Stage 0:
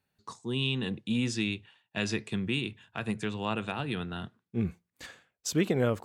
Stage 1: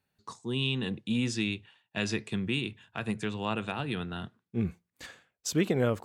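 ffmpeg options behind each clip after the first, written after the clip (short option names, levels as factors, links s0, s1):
-af anull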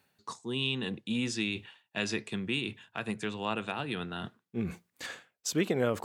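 -af "highpass=f=220:p=1,areverse,acompressor=mode=upward:threshold=0.0224:ratio=2.5,areverse"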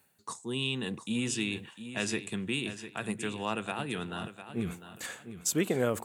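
-af "highshelf=f=6500:t=q:w=1.5:g=7.5,aecho=1:1:702|1404|2106:0.266|0.0745|0.0209"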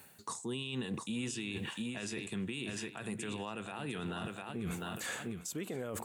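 -af "areverse,acompressor=threshold=0.0112:ratio=10,areverse,alimiter=level_in=7.08:limit=0.0631:level=0:latency=1:release=92,volume=0.141,volume=3.55"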